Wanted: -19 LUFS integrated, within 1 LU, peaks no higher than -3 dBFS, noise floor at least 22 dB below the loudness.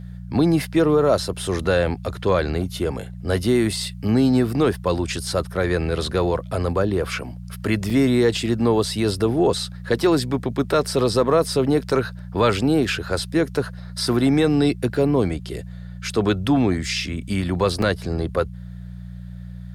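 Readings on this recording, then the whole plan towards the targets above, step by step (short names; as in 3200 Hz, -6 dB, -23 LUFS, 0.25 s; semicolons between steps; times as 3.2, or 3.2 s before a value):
dropouts 2; longest dropout 3.7 ms; hum 60 Hz; harmonics up to 180 Hz; hum level -32 dBFS; loudness -21.5 LUFS; peak -7.5 dBFS; loudness target -19.0 LUFS
-> interpolate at 7.9/17.82, 3.7 ms; de-hum 60 Hz, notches 3; gain +2.5 dB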